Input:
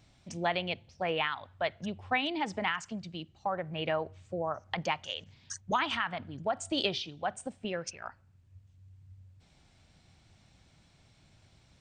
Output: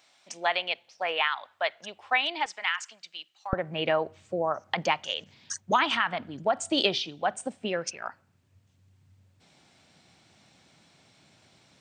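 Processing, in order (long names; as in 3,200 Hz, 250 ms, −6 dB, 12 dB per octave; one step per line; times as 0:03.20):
high-pass filter 710 Hz 12 dB per octave, from 0:02.46 1,500 Hz, from 0:03.53 200 Hz
level +6 dB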